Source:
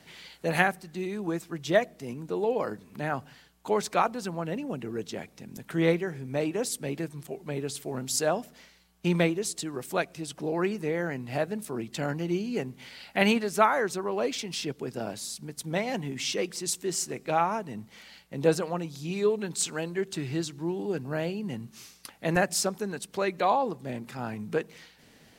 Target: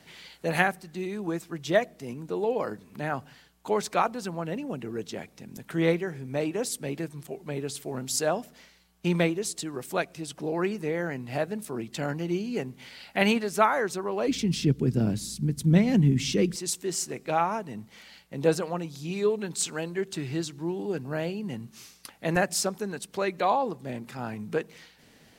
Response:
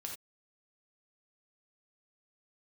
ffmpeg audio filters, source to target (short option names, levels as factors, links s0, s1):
-filter_complex "[0:a]asplit=3[s0][s1][s2];[s0]afade=t=out:st=14.27:d=0.02[s3];[s1]asubboost=boost=9.5:cutoff=230,afade=t=in:st=14.27:d=0.02,afade=t=out:st=16.55:d=0.02[s4];[s2]afade=t=in:st=16.55:d=0.02[s5];[s3][s4][s5]amix=inputs=3:normalize=0"